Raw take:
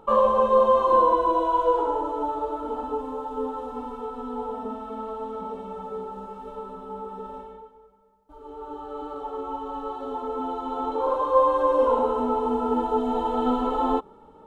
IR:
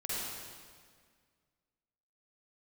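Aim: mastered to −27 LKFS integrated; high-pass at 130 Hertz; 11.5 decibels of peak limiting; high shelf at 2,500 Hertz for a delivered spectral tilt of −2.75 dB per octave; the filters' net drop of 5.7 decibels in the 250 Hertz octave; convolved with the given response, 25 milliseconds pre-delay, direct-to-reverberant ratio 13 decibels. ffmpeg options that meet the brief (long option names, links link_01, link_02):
-filter_complex "[0:a]highpass=130,equalizer=frequency=250:width_type=o:gain=-6,highshelf=frequency=2500:gain=5.5,alimiter=limit=-19dB:level=0:latency=1,asplit=2[link_01][link_02];[1:a]atrim=start_sample=2205,adelay=25[link_03];[link_02][link_03]afir=irnorm=-1:irlink=0,volume=-17dB[link_04];[link_01][link_04]amix=inputs=2:normalize=0,volume=2.5dB"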